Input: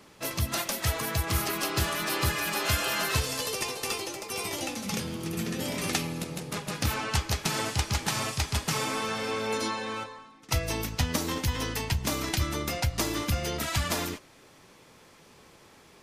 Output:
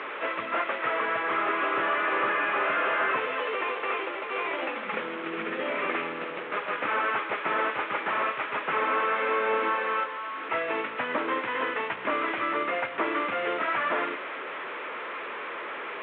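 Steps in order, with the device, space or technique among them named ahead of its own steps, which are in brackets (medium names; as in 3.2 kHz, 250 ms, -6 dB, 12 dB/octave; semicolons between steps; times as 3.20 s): dynamic bell 110 Hz, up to +7 dB, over -42 dBFS, Q 0.9; digital answering machine (band-pass 330–3200 Hz; one-bit delta coder 16 kbps, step -36.5 dBFS; cabinet simulation 440–3800 Hz, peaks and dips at 780 Hz -7 dB, 1.3 kHz +3 dB, 2.9 kHz -4 dB); trim +8.5 dB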